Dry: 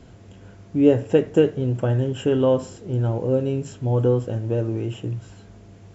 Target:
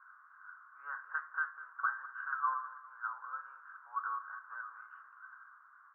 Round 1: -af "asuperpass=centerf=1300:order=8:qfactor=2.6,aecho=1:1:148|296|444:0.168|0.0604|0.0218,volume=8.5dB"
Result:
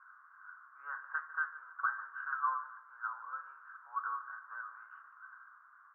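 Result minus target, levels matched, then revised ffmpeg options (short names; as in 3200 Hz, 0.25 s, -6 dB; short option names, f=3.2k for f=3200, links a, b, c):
echo 51 ms early
-af "asuperpass=centerf=1300:order=8:qfactor=2.6,aecho=1:1:199|398|597:0.168|0.0604|0.0218,volume=8.5dB"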